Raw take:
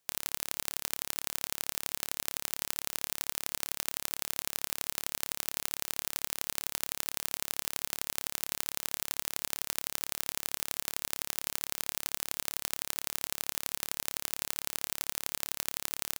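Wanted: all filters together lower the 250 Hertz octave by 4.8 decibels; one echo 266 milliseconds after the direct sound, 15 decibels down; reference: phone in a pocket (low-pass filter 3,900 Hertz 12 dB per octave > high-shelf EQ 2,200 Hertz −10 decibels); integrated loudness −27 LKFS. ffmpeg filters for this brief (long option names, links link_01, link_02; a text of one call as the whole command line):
ffmpeg -i in.wav -af "lowpass=3900,equalizer=frequency=250:width_type=o:gain=-6.5,highshelf=frequency=2200:gain=-10,aecho=1:1:266:0.178,volume=20dB" out.wav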